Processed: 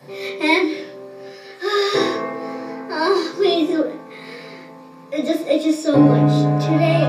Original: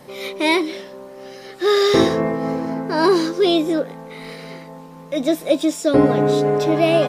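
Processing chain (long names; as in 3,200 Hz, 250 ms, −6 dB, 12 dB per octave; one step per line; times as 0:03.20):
0:01.29–0:03.33: high-pass filter 460 Hz 6 dB per octave
convolution reverb RT60 0.40 s, pre-delay 3 ms, DRR −2.5 dB
level −6.5 dB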